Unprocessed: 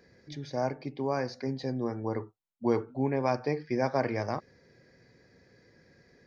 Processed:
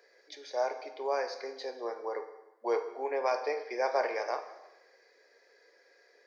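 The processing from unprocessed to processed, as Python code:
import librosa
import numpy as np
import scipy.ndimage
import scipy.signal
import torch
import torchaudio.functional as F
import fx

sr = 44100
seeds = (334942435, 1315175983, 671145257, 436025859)

y = scipy.signal.sosfilt(scipy.signal.butter(6, 420.0, 'highpass', fs=sr, output='sos'), x)
y = fx.rev_plate(y, sr, seeds[0], rt60_s=1.0, hf_ratio=0.95, predelay_ms=0, drr_db=7.0)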